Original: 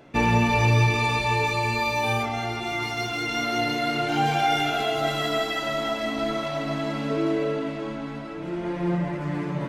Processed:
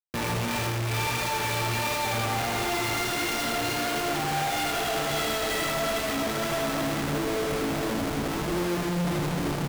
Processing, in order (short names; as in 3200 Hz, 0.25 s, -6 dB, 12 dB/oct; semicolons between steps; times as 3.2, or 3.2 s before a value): high shelf 5600 Hz +9.5 dB; de-hum 192.5 Hz, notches 5; in parallel at +1.5 dB: limiter -21 dBFS, peak gain reduction 11.5 dB; on the sum: soft clip -19 dBFS, distortion -12 dB; chorus 1.5 Hz, depth 5.6 ms; Schmitt trigger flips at -33.5 dBFS; echo 80 ms -4.5 dB; gain -2.5 dB